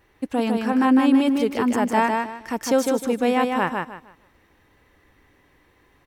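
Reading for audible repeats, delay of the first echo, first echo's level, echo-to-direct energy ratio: 3, 154 ms, -4.0 dB, -3.5 dB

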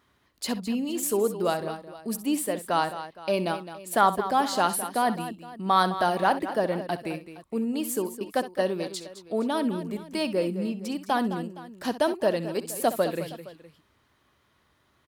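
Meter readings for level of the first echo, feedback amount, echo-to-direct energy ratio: -14.0 dB, no regular repeats, -9.5 dB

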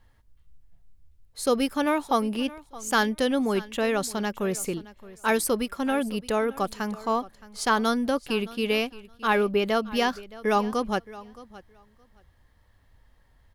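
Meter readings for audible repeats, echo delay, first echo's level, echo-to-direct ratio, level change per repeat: 2, 619 ms, -19.0 dB, -19.0 dB, -16.0 dB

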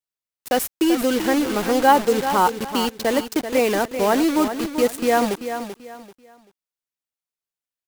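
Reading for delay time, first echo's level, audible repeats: 387 ms, -9.5 dB, 3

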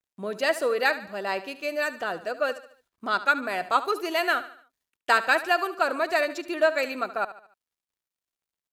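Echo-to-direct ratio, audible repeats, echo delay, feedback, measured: -13.5 dB, 3, 73 ms, 44%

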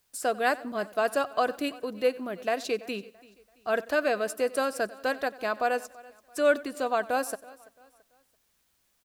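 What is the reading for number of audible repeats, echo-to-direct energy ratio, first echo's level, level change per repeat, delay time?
4, -17.5 dB, -20.0 dB, no regular repeats, 93 ms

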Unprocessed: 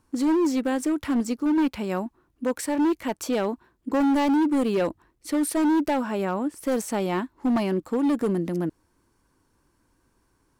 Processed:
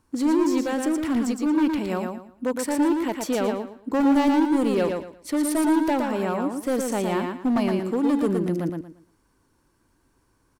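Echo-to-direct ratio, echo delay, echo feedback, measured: -4.0 dB, 115 ms, 26%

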